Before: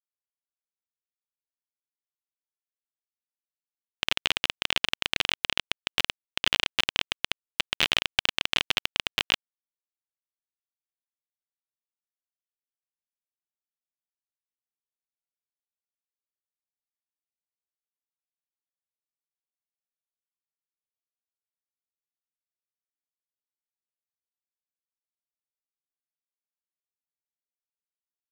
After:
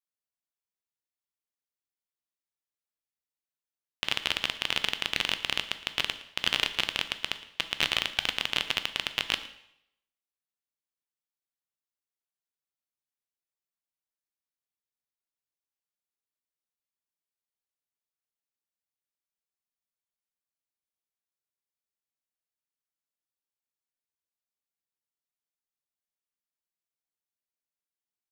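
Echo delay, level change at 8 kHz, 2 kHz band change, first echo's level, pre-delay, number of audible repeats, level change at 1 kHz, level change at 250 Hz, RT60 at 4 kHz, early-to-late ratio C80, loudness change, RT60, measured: 114 ms, −2.0 dB, −2.0 dB, −19.5 dB, 5 ms, 1, −2.0 dB, −2.0 dB, 0.70 s, 14.5 dB, −2.0 dB, 0.75 s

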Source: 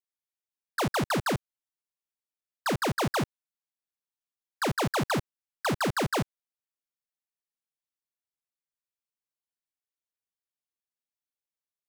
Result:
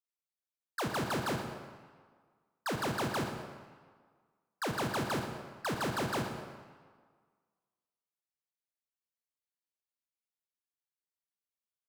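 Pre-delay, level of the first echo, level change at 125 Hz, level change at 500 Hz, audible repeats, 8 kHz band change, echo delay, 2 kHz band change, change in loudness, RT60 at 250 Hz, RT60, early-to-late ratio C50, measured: 20 ms, −12.0 dB, −6.5 dB, −5.5 dB, 1, −6.0 dB, 116 ms, −5.5 dB, −6.0 dB, 1.5 s, 1.6 s, 5.0 dB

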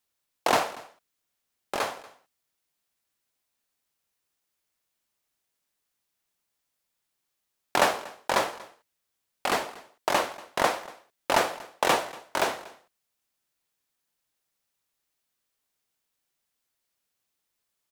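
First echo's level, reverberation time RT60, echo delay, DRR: −21.0 dB, no reverb audible, 237 ms, no reverb audible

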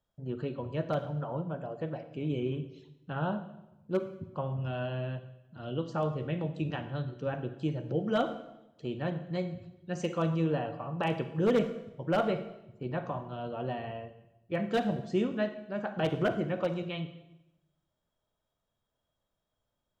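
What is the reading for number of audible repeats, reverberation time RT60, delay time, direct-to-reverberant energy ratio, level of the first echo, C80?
no echo audible, 0.90 s, no echo audible, 10.0 dB, no echo audible, 13.5 dB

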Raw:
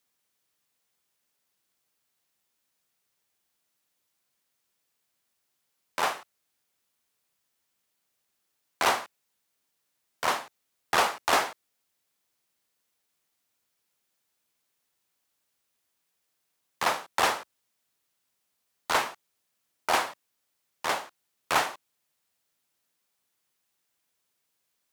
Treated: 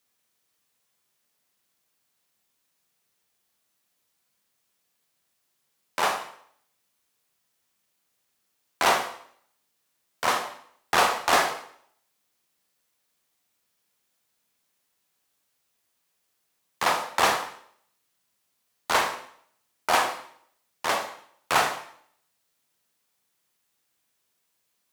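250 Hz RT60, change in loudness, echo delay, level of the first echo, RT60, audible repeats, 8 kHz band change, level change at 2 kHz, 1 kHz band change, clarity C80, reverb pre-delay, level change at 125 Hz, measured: 0.60 s, +3.0 dB, no echo audible, no echo audible, 0.60 s, no echo audible, +3.5 dB, +3.0 dB, +3.5 dB, 12.0 dB, 7 ms, +4.0 dB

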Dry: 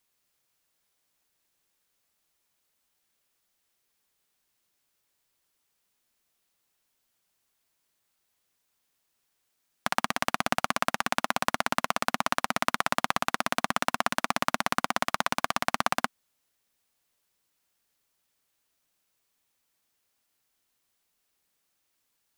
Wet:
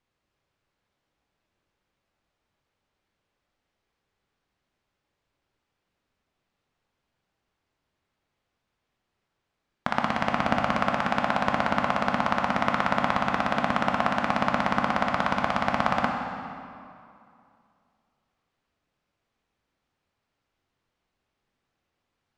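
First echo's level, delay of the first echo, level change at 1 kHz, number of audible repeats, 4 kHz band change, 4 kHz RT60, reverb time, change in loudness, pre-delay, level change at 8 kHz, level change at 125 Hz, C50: no echo audible, no echo audible, +4.0 dB, no echo audible, −3.0 dB, 1.8 s, 2.5 s, +3.0 dB, 13 ms, −12.5 dB, +8.5 dB, 3.5 dB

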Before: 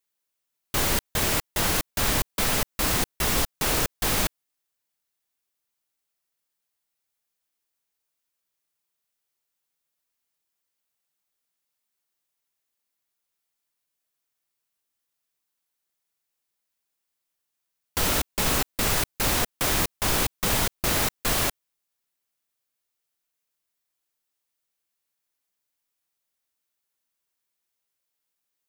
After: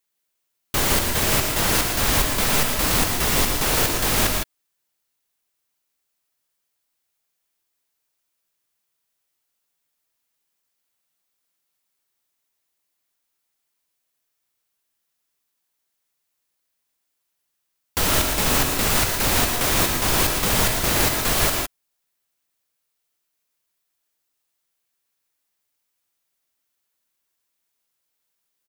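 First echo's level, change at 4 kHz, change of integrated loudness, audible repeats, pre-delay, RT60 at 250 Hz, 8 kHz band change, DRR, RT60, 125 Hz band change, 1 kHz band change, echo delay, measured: −7.5 dB, +5.0 dB, +5.0 dB, 2, no reverb audible, no reverb audible, +5.0 dB, no reverb audible, no reverb audible, +5.0 dB, +5.0 dB, 116 ms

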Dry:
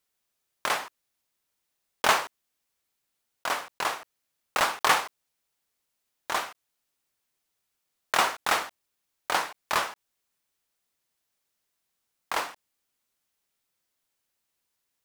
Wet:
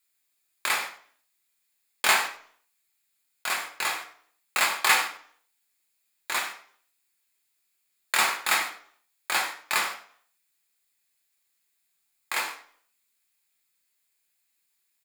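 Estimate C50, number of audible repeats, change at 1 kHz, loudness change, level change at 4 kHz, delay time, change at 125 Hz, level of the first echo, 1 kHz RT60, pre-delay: 10.0 dB, 1, −2.0 dB, +1.5 dB, +2.5 dB, 96 ms, can't be measured, −15.0 dB, 0.50 s, 3 ms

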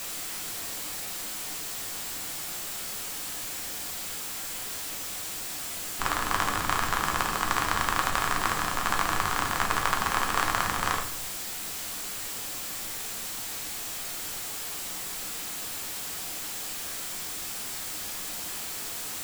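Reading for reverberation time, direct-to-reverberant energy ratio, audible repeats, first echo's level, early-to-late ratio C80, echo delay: 0.65 s, 2.0 dB, no echo audible, no echo audible, 12.5 dB, no echo audible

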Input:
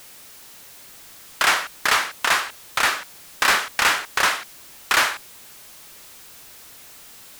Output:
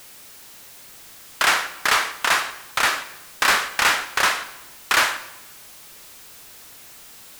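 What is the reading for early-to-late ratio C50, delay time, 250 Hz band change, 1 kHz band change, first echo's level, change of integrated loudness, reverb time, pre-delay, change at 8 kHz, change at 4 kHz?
13.0 dB, no echo audible, 0.0 dB, +0.5 dB, no echo audible, 0.0 dB, 0.95 s, 25 ms, +0.5 dB, 0.0 dB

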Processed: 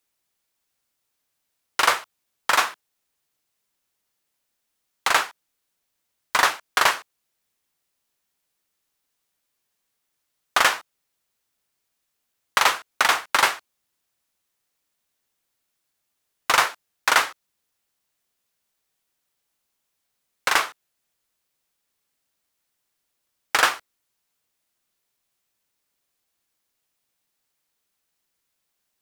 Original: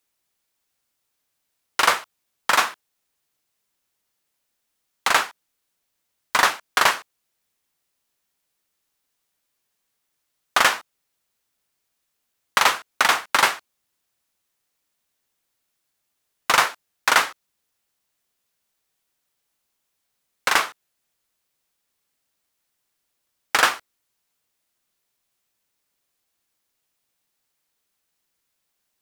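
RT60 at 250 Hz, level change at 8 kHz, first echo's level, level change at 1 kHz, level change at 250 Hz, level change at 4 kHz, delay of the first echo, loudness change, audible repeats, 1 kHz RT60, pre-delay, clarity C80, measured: no reverb audible, −1.0 dB, no echo audible, −1.0 dB, −3.0 dB, −1.0 dB, no echo audible, −1.0 dB, no echo audible, no reverb audible, no reverb audible, no reverb audible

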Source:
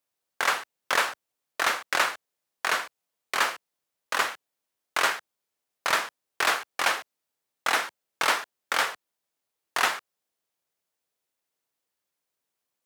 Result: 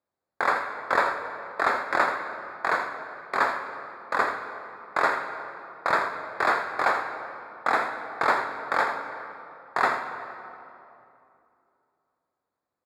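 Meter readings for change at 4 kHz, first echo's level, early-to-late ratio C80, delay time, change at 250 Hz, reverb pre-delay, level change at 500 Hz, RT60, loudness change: −11.0 dB, −11.0 dB, 6.5 dB, 82 ms, +6.5 dB, 8 ms, +6.0 dB, 2.8 s, 0.0 dB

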